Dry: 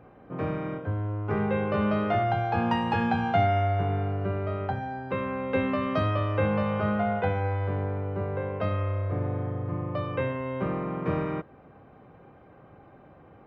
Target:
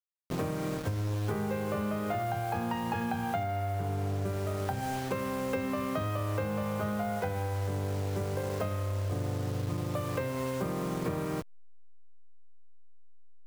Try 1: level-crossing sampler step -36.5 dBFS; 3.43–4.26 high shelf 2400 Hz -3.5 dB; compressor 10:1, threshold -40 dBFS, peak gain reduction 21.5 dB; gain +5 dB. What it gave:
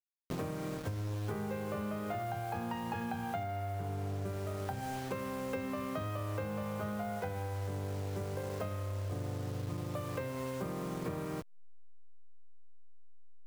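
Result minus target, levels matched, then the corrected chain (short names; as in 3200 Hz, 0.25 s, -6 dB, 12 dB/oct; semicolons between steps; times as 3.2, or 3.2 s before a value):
compressor: peak gain reduction +5.5 dB
level-crossing sampler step -36.5 dBFS; 3.43–4.26 high shelf 2400 Hz -3.5 dB; compressor 10:1, threshold -34 dBFS, peak gain reduction 16 dB; gain +5 dB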